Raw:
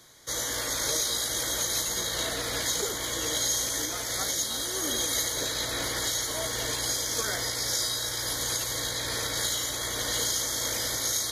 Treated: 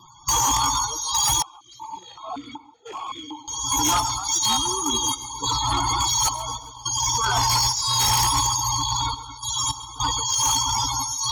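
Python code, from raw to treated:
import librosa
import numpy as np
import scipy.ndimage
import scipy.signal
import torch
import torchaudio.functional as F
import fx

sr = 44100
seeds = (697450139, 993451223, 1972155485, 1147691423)

y = fx.peak_eq(x, sr, hz=890.0, db=11.0, octaves=0.55)
y = fx.notch(y, sr, hz=2000.0, q=8.7)
y = y + 0.68 * np.pad(y, (int(0.9 * sr / 1000.0), 0))[:len(y)]
y = fx.over_compress(y, sr, threshold_db=-30.0, ratio=-0.5)
y = fx.tremolo_random(y, sr, seeds[0], hz=3.5, depth_pct=95)
y = fx.spec_topn(y, sr, count=32)
y = fx.fold_sine(y, sr, drive_db=13, ceiling_db=-16.0)
y = fx.vibrato(y, sr, rate_hz=1.7, depth_cents=16.0)
y = fx.echo_feedback(y, sr, ms=136, feedback_pct=47, wet_db=-16.0)
y = fx.vowel_held(y, sr, hz=5.3, at=(1.42, 3.48))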